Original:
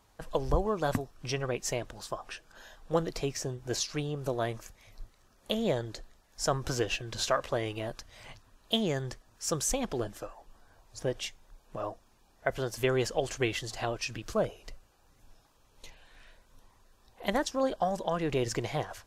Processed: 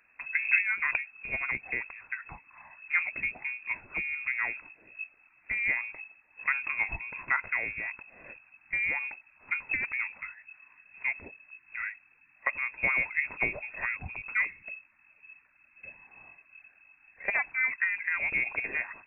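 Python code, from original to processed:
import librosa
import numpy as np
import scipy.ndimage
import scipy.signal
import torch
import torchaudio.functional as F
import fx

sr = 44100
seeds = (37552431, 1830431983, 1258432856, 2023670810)

y = fx.freq_invert(x, sr, carrier_hz=2600)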